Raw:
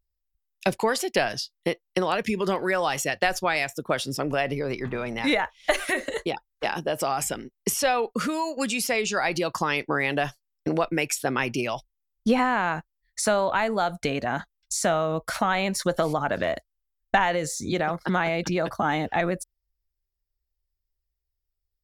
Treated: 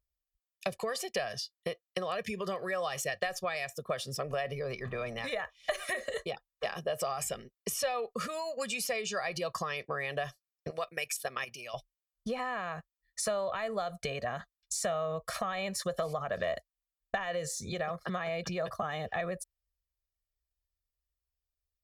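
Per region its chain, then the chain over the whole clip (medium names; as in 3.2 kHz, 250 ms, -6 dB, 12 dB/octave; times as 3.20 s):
10.70–11.74 s: tilt EQ +2.5 dB/octave + level held to a coarse grid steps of 13 dB
whole clip: high-pass 54 Hz 6 dB/octave; compression 4:1, threshold -25 dBFS; comb 1.7 ms, depth 82%; trim -7.5 dB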